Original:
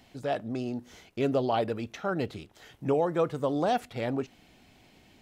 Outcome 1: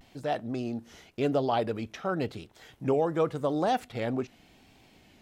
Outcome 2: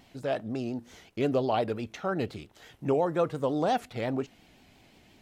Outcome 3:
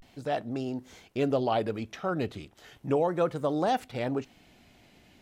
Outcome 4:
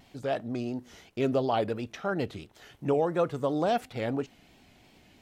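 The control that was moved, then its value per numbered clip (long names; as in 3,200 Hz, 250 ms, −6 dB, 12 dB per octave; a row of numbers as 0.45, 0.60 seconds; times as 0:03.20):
pitch vibrato, speed: 0.9, 5.7, 0.35, 2.9 Hertz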